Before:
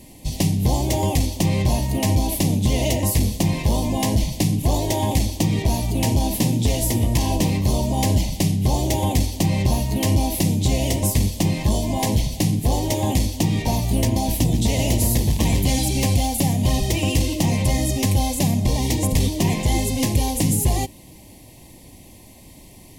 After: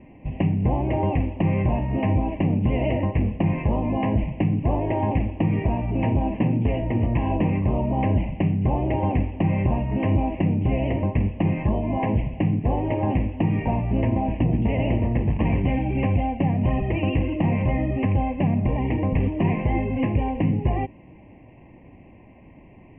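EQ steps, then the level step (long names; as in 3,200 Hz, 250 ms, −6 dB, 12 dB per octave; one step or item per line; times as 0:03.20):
Butterworth low-pass 2,800 Hz 96 dB per octave
high-frequency loss of the air 230 metres
low-shelf EQ 67 Hz −7.5 dB
0.0 dB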